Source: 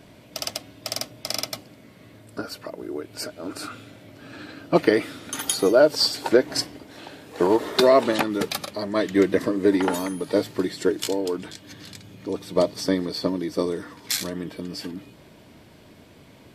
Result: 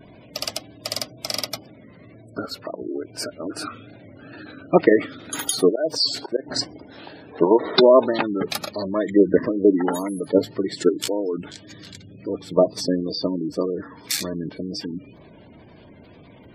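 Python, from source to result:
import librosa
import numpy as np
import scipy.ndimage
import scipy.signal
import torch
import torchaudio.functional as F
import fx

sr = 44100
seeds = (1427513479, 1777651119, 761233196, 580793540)

p1 = fx.auto_swell(x, sr, attack_ms=196.0, at=(5.69, 6.46), fade=0.02)
p2 = fx.wow_flutter(p1, sr, seeds[0], rate_hz=2.1, depth_cents=83.0)
p3 = fx.level_steps(p2, sr, step_db=18)
p4 = p2 + (p3 * 10.0 ** (0.0 / 20.0))
p5 = fx.spec_gate(p4, sr, threshold_db=-20, keep='strong')
y = p5 * 10.0 ** (-1.0 / 20.0)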